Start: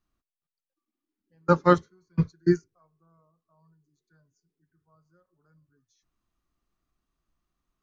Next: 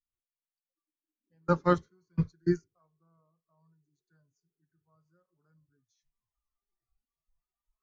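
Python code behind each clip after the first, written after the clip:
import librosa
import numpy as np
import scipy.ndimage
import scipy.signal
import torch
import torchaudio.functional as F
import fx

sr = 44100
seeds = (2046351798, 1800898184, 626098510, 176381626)

y = fx.noise_reduce_blind(x, sr, reduce_db=19)
y = fx.low_shelf(y, sr, hz=87.0, db=9.0)
y = y * 10.0 ** (-6.5 / 20.0)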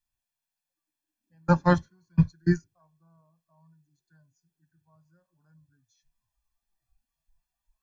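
y = x + 0.77 * np.pad(x, (int(1.2 * sr / 1000.0), 0))[:len(x)]
y = y * 10.0 ** (4.5 / 20.0)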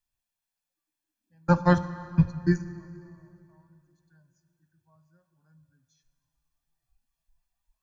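y = fx.rev_plate(x, sr, seeds[0], rt60_s=2.7, hf_ratio=0.75, predelay_ms=0, drr_db=12.5)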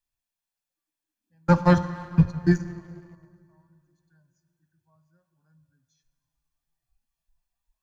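y = fx.leveller(x, sr, passes=1)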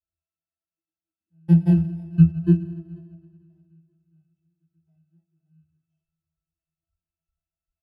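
y = fx.bit_reversed(x, sr, seeds[1], block=32)
y = fx.octave_resonator(y, sr, note='E', decay_s=0.21)
y = y * 10.0 ** (8.5 / 20.0)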